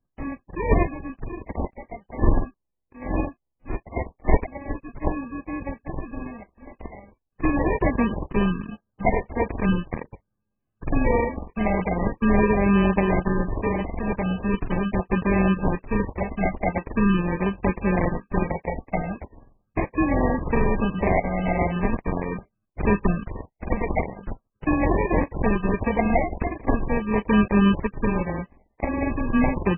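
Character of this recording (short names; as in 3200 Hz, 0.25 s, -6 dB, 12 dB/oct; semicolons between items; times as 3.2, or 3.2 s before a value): a buzz of ramps at a fixed pitch in blocks of 32 samples; phasing stages 8, 0.41 Hz, lowest notch 330–1300 Hz; aliases and images of a low sample rate 1400 Hz, jitter 0%; MP3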